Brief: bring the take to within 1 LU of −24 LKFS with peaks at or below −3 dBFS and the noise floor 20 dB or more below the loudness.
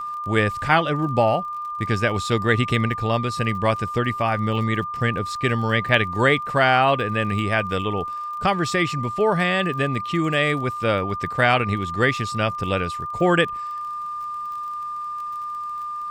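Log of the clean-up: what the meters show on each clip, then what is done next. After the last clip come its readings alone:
crackle rate 35 per second; interfering tone 1,200 Hz; level of the tone −27 dBFS; integrated loudness −22.0 LKFS; sample peak −3.0 dBFS; target loudness −24.0 LKFS
→ click removal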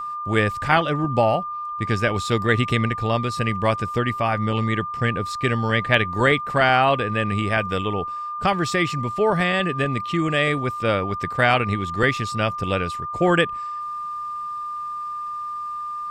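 crackle rate 0.062 per second; interfering tone 1,200 Hz; level of the tone −27 dBFS
→ notch filter 1,200 Hz, Q 30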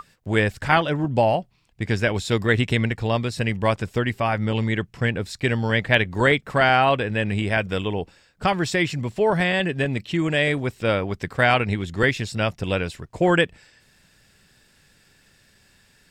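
interfering tone none found; integrated loudness −22.0 LKFS; sample peak −3.5 dBFS; target loudness −24.0 LKFS
→ level −2 dB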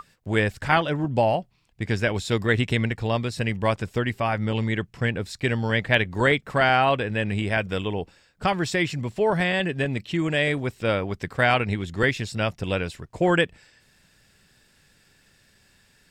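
integrated loudness −24.0 LKFS; sample peak −5.5 dBFS; background noise floor −61 dBFS

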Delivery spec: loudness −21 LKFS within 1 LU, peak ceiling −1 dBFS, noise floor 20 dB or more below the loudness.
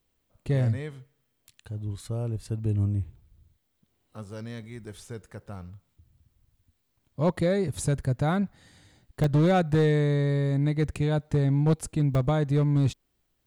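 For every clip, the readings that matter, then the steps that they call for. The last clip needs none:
share of clipped samples 0.6%; peaks flattened at −16.0 dBFS; number of dropouts 2; longest dropout 1.6 ms; integrated loudness −26.0 LKFS; sample peak −16.0 dBFS; target loudness −21.0 LKFS
→ clipped peaks rebuilt −16 dBFS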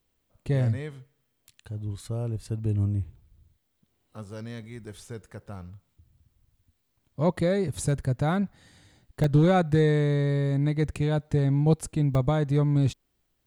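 share of clipped samples 0.0%; number of dropouts 2; longest dropout 1.6 ms
→ repair the gap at 0:09.24/0:12.15, 1.6 ms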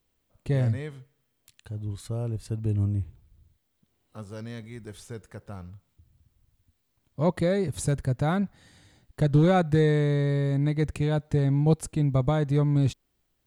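number of dropouts 0; integrated loudness −25.5 LKFS; sample peak −9.5 dBFS; target loudness −21.0 LKFS
→ level +4.5 dB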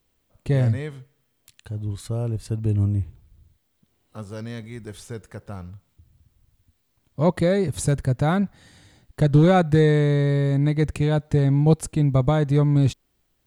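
integrated loudness −21.0 LKFS; sample peak −5.0 dBFS; background noise floor −70 dBFS

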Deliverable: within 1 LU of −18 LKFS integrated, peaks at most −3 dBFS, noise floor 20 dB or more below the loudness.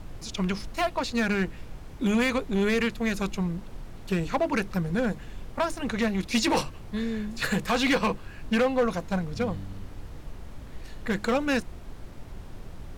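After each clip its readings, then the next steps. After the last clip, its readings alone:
share of clipped samples 1.1%; peaks flattened at −18.0 dBFS; background noise floor −43 dBFS; target noise floor −48 dBFS; integrated loudness −27.5 LKFS; sample peak −18.0 dBFS; target loudness −18.0 LKFS
→ clipped peaks rebuilt −18 dBFS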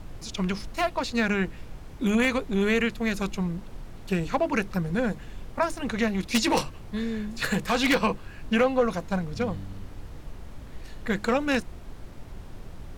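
share of clipped samples 0.0%; background noise floor −43 dBFS; target noise floor −47 dBFS
→ noise reduction from a noise print 6 dB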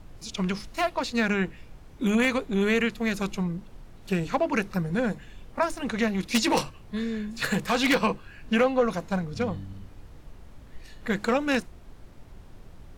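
background noise floor −48 dBFS; integrated loudness −27.0 LKFS; sample peak −9.0 dBFS; target loudness −18.0 LKFS
→ level +9 dB
brickwall limiter −3 dBFS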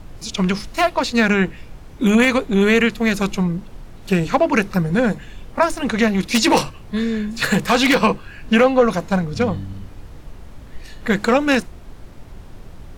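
integrated loudness −18.0 LKFS; sample peak −3.0 dBFS; background noise floor −39 dBFS

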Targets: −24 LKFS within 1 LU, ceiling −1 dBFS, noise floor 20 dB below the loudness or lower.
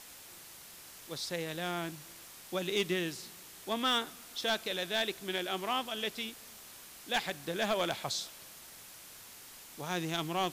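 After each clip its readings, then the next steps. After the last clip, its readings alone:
share of clipped samples 0.3%; peaks flattened at −24.0 dBFS; background noise floor −52 dBFS; target noise floor −55 dBFS; integrated loudness −34.5 LKFS; sample peak −24.0 dBFS; target loudness −24.0 LKFS
→ clipped peaks rebuilt −24 dBFS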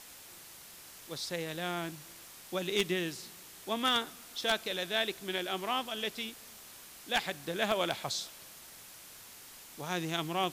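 share of clipped samples 0.0%; background noise floor −52 dBFS; target noise floor −54 dBFS
→ noise reduction from a noise print 6 dB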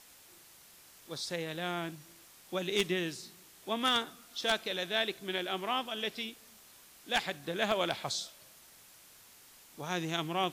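background noise floor −58 dBFS; integrated loudness −34.0 LKFS; sample peak −15.0 dBFS; target loudness −24.0 LKFS
→ level +10 dB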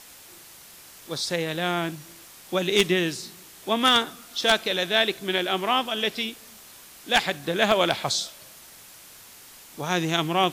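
integrated loudness −24.0 LKFS; sample peak −5.0 dBFS; background noise floor −48 dBFS

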